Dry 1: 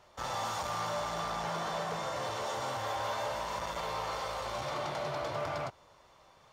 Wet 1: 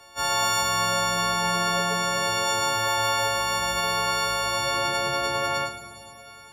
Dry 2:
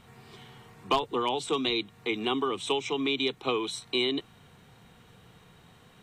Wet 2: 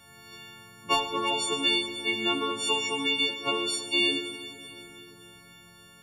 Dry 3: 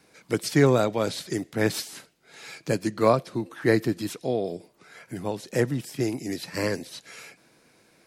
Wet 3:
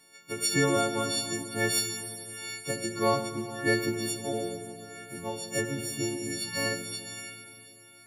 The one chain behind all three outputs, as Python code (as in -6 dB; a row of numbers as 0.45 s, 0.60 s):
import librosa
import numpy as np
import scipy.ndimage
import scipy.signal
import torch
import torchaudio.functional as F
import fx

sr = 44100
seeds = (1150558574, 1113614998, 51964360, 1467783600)

y = fx.freq_snap(x, sr, grid_st=4)
y = fx.rev_schroeder(y, sr, rt60_s=3.4, comb_ms=31, drr_db=5.5)
y = fx.end_taper(y, sr, db_per_s=130.0)
y = y * 10.0 ** (-12 / 20.0) / np.max(np.abs(y))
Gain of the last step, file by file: +6.5 dB, -2.5 dB, -6.5 dB